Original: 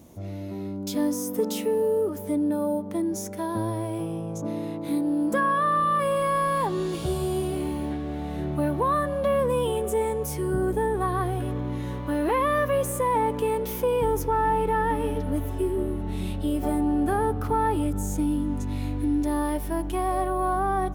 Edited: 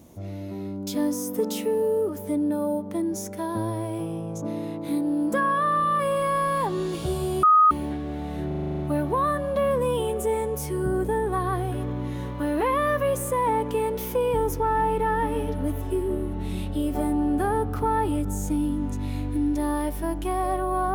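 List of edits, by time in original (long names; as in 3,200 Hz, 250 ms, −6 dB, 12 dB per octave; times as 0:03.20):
0:07.43–0:07.71: beep over 1,250 Hz −12.5 dBFS
0:08.47: stutter 0.04 s, 9 plays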